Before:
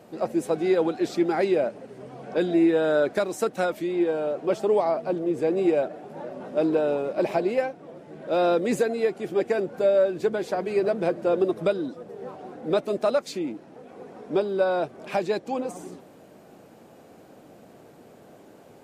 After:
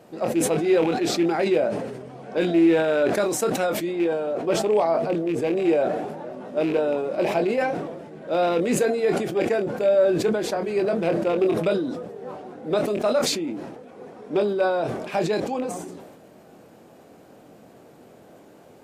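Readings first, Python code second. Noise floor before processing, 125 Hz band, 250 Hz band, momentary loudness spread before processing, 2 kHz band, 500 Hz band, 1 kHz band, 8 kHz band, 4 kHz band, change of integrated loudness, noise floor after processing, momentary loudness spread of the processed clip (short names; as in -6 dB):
-51 dBFS, +5.0 dB, +2.5 dB, 16 LU, +3.5 dB, +1.5 dB, +2.5 dB, n/a, +7.0 dB, +2.0 dB, -50 dBFS, 14 LU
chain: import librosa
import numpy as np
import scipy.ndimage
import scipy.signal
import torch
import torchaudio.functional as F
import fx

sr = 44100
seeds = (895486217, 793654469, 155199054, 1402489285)

y = fx.rattle_buzz(x, sr, strikes_db=-30.0, level_db=-27.0)
y = fx.doubler(y, sr, ms=24.0, db=-9.0)
y = fx.sustainer(y, sr, db_per_s=44.0)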